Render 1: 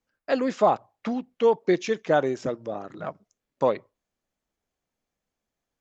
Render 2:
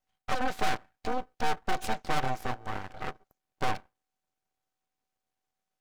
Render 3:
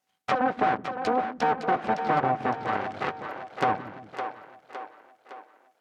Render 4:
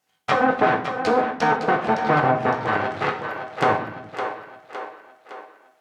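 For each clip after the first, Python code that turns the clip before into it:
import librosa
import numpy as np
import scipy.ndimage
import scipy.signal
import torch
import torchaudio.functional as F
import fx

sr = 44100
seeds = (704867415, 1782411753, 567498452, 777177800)

y1 = fx.tube_stage(x, sr, drive_db=23.0, bias=0.6)
y1 = y1 * np.sin(2.0 * np.pi * 380.0 * np.arange(len(y1)) / sr)
y1 = np.abs(y1)
y1 = F.gain(torch.from_numpy(y1), 5.0).numpy()
y2 = fx.env_lowpass_down(y1, sr, base_hz=1400.0, full_db=-25.5)
y2 = scipy.signal.sosfilt(scipy.signal.butter(2, 170.0, 'highpass', fs=sr, output='sos'), y2)
y2 = fx.echo_split(y2, sr, split_hz=320.0, low_ms=169, high_ms=561, feedback_pct=52, wet_db=-8.0)
y2 = F.gain(torch.from_numpy(y2), 7.5).numpy()
y3 = fx.doubler(y2, sr, ms=19.0, db=-14)
y3 = fx.rev_gated(y3, sr, seeds[0], gate_ms=170, shape='falling', drr_db=3.0)
y3 = F.gain(torch.from_numpy(y3), 5.0).numpy()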